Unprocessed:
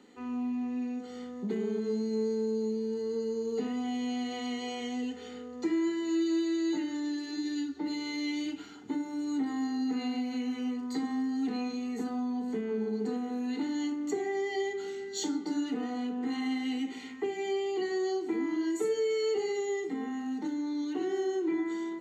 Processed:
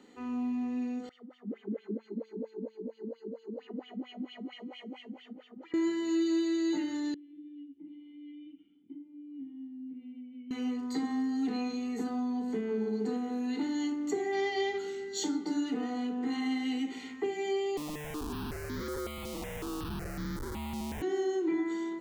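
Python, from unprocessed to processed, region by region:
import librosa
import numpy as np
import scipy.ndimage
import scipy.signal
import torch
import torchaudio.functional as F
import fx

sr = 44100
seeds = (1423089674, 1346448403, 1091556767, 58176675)

y = fx.chain(x, sr, fx.notch(hz=620.0, q=7.3),
    fx.wah_lfo(hz=4.4, low_hz=200.0, high_hz=3200.0, q=6.7),
    fx.echo_feedback(ms=211, feedback_pct=26, wet_db=-3.0), at=(1.09, 5.74))
y = fx.chain(y, sr, fx.formant_cascade(vowel='i'),
    fx.comb_fb(f0_hz=170.0, decay_s=0.23, harmonics='all', damping=0.0, mix_pct=80), at=(7.14, 10.51))
y = fx.envelope_flatten(y, sr, power=0.6, at=(14.31, 14.78), fade=0.02)
y = fx.lowpass(y, sr, hz=5300.0, slope=24, at=(14.31, 14.78), fade=0.02)
y = fx.doubler(y, sr, ms=20.0, db=-11, at=(14.31, 14.78), fade=0.02)
y = fx.chain(y, sr, fx.ring_mod(carrier_hz=74.0),
    fx.schmitt(flips_db=-39.5),
    fx.phaser_held(hz=5.4, low_hz=420.0, high_hz=2700.0), at=(17.77, 21.02))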